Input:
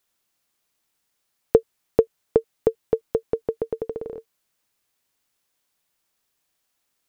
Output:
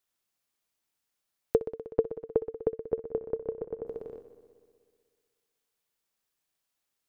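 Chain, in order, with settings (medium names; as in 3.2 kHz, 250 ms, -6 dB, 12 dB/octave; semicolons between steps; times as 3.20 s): 1.58–3.85 s: low-pass 1.9 kHz -> 1.5 kHz 12 dB/octave; multi-head delay 62 ms, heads first and second, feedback 72%, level -16.5 dB; trim -8.5 dB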